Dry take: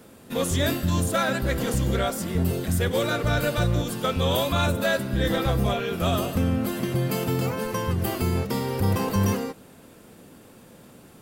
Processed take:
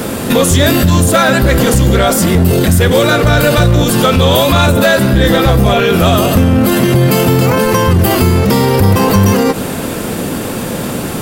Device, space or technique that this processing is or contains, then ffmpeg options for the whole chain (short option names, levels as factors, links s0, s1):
loud club master: -af "acompressor=threshold=0.0355:ratio=2,asoftclip=type=hard:threshold=0.075,alimiter=level_in=42.2:limit=0.891:release=50:level=0:latency=1,volume=0.794"